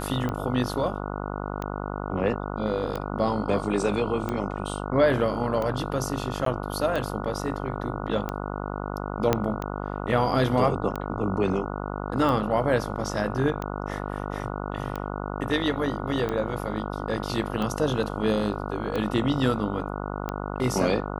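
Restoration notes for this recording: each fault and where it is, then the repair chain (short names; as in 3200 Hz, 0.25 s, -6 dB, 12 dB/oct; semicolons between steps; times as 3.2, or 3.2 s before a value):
buzz 50 Hz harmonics 29 -32 dBFS
tick 45 rpm -17 dBFS
6.45–6.46 gap 13 ms
9.33 pop -7 dBFS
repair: de-click; de-hum 50 Hz, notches 29; interpolate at 6.45, 13 ms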